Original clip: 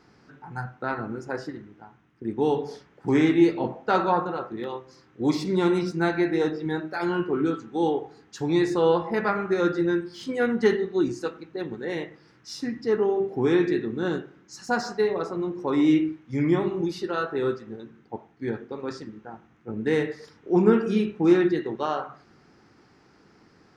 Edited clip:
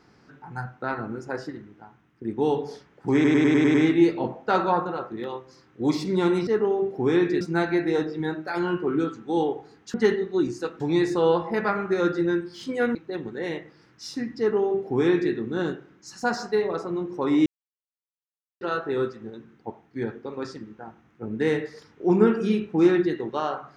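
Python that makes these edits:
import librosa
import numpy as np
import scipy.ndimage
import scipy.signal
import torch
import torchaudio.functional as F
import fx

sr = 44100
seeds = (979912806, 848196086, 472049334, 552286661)

y = fx.edit(x, sr, fx.stutter(start_s=3.14, slice_s=0.1, count=7),
    fx.move(start_s=10.55, length_s=0.86, to_s=8.4),
    fx.duplicate(start_s=12.85, length_s=0.94, to_s=5.87),
    fx.silence(start_s=15.92, length_s=1.15), tone=tone)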